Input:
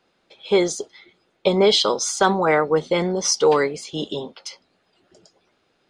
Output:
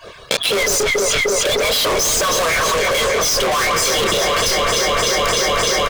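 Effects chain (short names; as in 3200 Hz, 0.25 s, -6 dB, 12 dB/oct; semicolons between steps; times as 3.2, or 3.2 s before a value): median-filter separation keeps percussive; comb 1.8 ms, depth 99%; in parallel at -11.5 dB: Schmitt trigger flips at -19.5 dBFS; on the sum: sample leveller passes 5; chorus 1.8 Hz, depth 7.9 ms; on a send: echo with dull and thin repeats by turns 0.151 s, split 1500 Hz, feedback 87%, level -10 dB; on the sum: soft clip -19.5 dBFS, distortion -5 dB; fast leveller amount 100%; gain +3 dB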